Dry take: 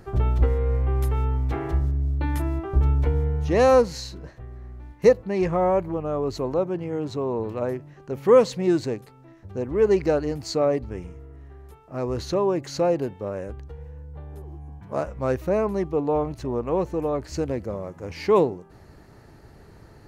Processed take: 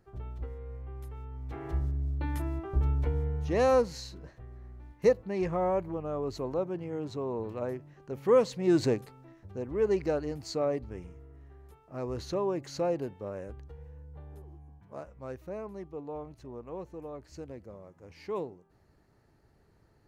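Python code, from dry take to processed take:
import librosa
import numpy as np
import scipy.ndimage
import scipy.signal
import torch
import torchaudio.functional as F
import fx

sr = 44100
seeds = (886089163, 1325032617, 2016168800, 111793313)

y = fx.gain(x, sr, db=fx.line((1.29, -19.0), (1.77, -7.5), (8.6, -7.5), (8.85, 1.5), (9.58, -8.0), (14.32, -8.0), (15.05, -16.5)))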